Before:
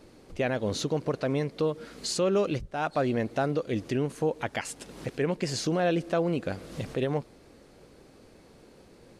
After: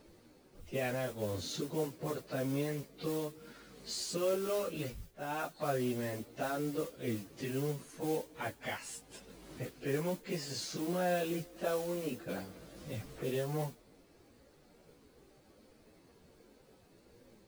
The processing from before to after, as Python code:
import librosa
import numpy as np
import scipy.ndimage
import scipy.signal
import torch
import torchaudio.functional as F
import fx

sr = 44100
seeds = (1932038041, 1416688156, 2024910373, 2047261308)

y = fx.mod_noise(x, sr, seeds[0], snr_db=16)
y = fx.stretch_vocoder_free(y, sr, factor=1.9)
y = F.gain(torch.from_numpy(y), -5.5).numpy()